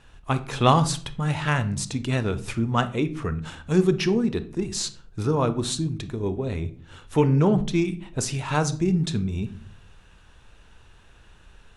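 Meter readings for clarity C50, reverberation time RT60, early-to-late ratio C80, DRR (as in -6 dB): 15.0 dB, 0.45 s, 20.0 dB, 11.5 dB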